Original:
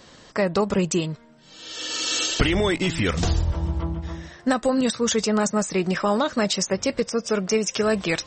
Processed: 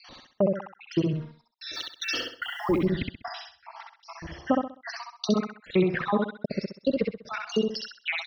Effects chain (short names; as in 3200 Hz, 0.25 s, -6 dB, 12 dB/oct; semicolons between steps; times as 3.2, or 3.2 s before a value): random spectral dropouts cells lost 66%; treble ducked by the level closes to 1400 Hz, closed at -23 dBFS; steep low-pass 5800 Hz 96 dB/oct; high shelf 3200 Hz +4.5 dB; 1.74–2.78 added noise blue -63 dBFS; step gate "xx..xx..xxxxxx.." 149 bpm -60 dB; feedback echo 65 ms, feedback 32%, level -3.5 dB; dynamic EQ 930 Hz, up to -5 dB, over -40 dBFS, Q 0.99; gain +2 dB